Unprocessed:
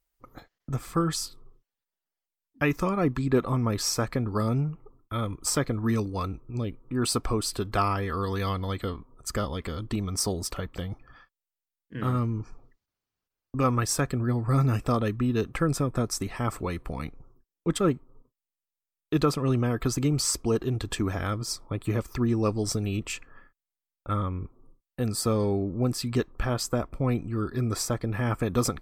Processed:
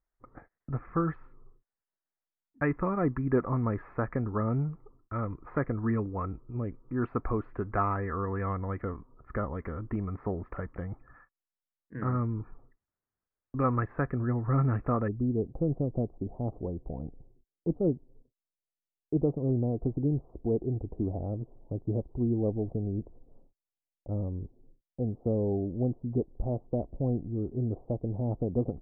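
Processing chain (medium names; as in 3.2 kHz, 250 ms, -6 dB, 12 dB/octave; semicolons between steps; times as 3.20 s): steep low-pass 2 kHz 48 dB/octave, from 15.07 s 770 Hz; trim -3 dB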